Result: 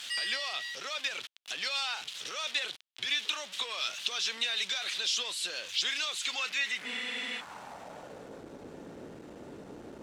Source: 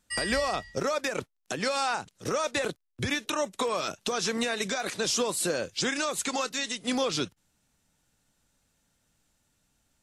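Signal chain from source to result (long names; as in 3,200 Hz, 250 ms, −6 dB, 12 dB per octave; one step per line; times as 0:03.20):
converter with a step at zero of −32.5 dBFS
in parallel at −1.5 dB: brickwall limiter −27.5 dBFS, peak gain reduction 11 dB
on the sum: band-pass filter sweep 3,300 Hz → 390 Hz, 0:06.25–0:08.47
frozen spectrum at 0:06.88, 0.51 s
level +1.5 dB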